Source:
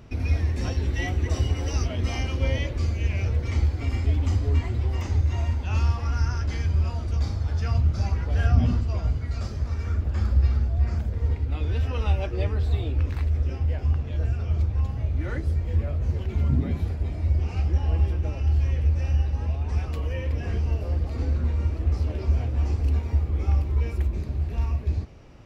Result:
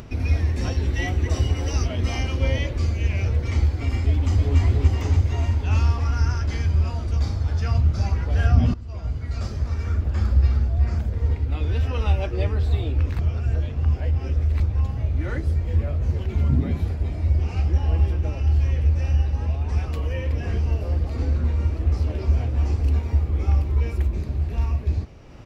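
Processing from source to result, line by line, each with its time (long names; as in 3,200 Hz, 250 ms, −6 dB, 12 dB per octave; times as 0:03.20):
0:04.09–0:04.58: delay throw 290 ms, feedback 75%, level −3 dB
0:08.74–0:09.44: fade in, from −19 dB
0:13.19–0:14.60: reverse
whole clip: upward compression, threshold −37 dBFS; level +2.5 dB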